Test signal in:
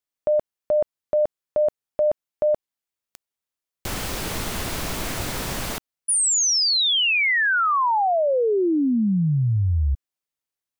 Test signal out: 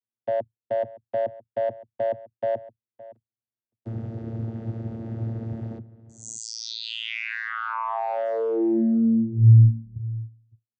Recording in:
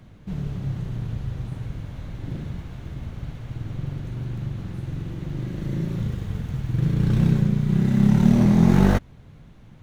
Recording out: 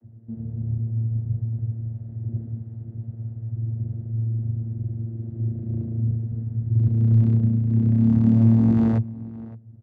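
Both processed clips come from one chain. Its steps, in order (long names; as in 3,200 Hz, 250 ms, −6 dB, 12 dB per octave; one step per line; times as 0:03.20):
adaptive Wiener filter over 41 samples
slap from a distant wall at 97 metres, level −18 dB
channel vocoder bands 16, saw 113 Hz
level +2 dB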